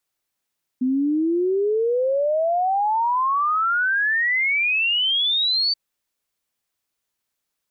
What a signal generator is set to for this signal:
exponential sine sweep 250 Hz → 4,600 Hz 4.93 s −17.5 dBFS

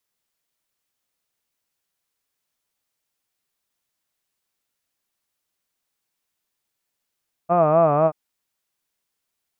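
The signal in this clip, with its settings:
vowel from formants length 0.63 s, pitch 167 Hz, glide −2 semitones, vibrato 4 Hz, vibrato depth 1.2 semitones, F1 660 Hz, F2 1,200 Hz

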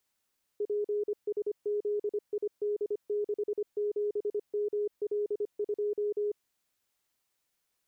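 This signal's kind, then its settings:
Morse code "PSZID67ML2" 25 words per minute 415 Hz −27.5 dBFS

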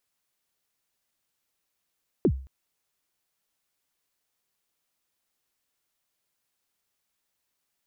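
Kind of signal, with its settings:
synth kick length 0.22 s, from 450 Hz, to 66 Hz, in 68 ms, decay 0.42 s, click off, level −14.5 dB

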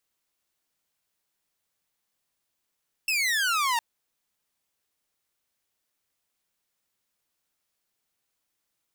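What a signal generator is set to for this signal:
single falling chirp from 2,700 Hz, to 900 Hz, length 0.71 s saw, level −20 dB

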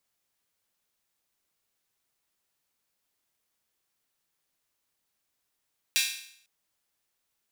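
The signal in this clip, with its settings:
open synth hi-hat length 0.50 s, high-pass 2,600 Hz, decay 0.64 s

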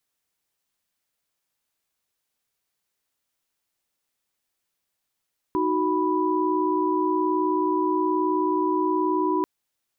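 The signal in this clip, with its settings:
held notes D#4/F#4/B5 sine, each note −24.5 dBFS 3.89 s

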